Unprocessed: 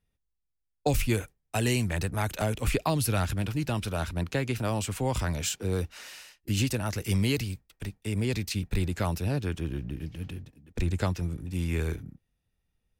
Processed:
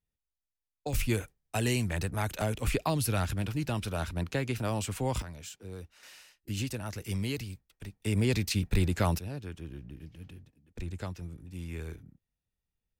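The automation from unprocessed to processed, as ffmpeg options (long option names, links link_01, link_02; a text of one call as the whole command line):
ffmpeg -i in.wav -af "asetnsamples=nb_out_samples=441:pad=0,asendcmd='0.93 volume volume -2.5dB;5.22 volume volume -14dB;6.03 volume volume -7dB;8 volume volume 1.5dB;9.19 volume volume -10dB',volume=-10dB" out.wav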